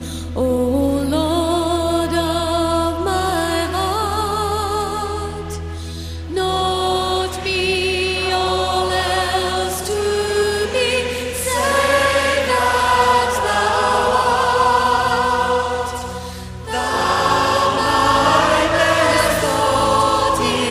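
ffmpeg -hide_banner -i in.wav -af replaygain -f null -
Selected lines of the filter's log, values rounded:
track_gain = -0.8 dB
track_peak = 0.606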